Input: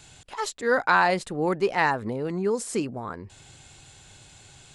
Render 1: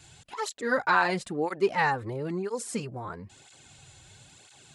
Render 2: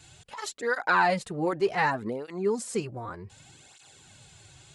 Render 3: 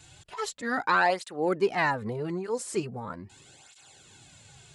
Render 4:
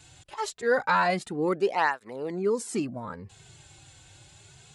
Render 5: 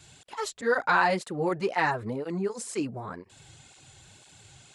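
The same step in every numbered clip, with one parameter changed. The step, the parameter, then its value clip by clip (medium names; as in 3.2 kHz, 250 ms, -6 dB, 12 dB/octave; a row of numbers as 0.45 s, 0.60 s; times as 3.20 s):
cancelling through-zero flanger, nulls at: 1 Hz, 0.66 Hz, 0.4 Hz, 0.25 Hz, 2 Hz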